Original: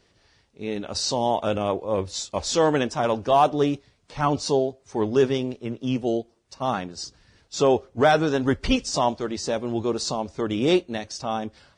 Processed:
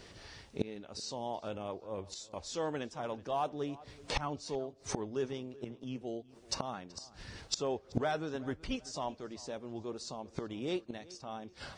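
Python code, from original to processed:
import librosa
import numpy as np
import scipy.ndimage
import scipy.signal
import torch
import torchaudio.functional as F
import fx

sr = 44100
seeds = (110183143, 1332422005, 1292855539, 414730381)

y = fx.gate_flip(x, sr, shuts_db=-27.0, range_db=-25)
y = fx.echo_filtered(y, sr, ms=379, feedback_pct=38, hz=4000.0, wet_db=-20)
y = y * 10.0 ** (9.0 / 20.0)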